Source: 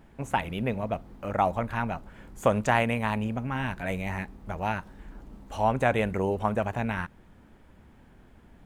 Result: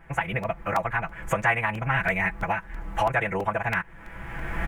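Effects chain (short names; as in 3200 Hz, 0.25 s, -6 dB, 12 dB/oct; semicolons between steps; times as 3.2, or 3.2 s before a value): recorder AGC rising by 16 dB/s; graphic EQ 250/500/2000/4000 Hz -11/-4/+9/-10 dB; time stretch by phase-locked vocoder 0.54×; in parallel at -2 dB: compressor, threshold -37 dBFS, peak gain reduction 16.5 dB; on the sum: tone controls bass -2 dB, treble -7 dB; comb 6 ms, depth 63%; crackling interface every 0.33 s, samples 128, repeat, from 0.43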